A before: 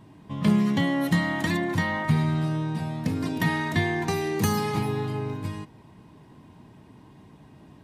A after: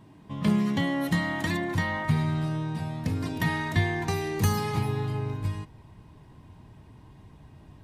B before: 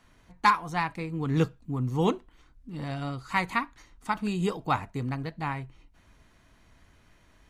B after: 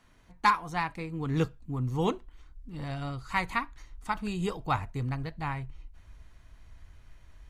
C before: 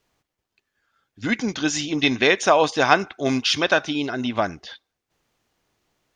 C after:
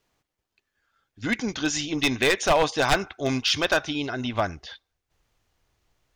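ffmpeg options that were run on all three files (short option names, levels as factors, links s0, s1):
-af "aeval=exprs='0.316*(abs(mod(val(0)/0.316+3,4)-2)-1)':c=same,asubboost=boost=5:cutoff=93,volume=0.794"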